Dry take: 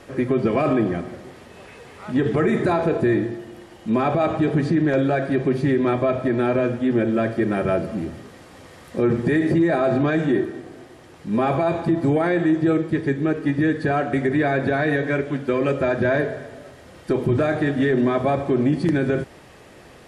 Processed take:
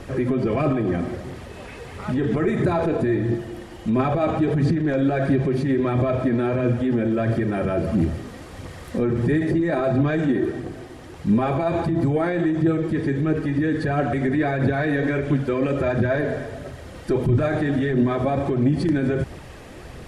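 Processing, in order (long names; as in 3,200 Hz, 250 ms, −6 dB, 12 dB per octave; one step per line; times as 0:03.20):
low-shelf EQ 130 Hz +11.5 dB
brickwall limiter −17.5 dBFS, peak gain reduction 10.5 dB
phase shifter 1.5 Hz, delay 4.4 ms, feedback 34%
level +3 dB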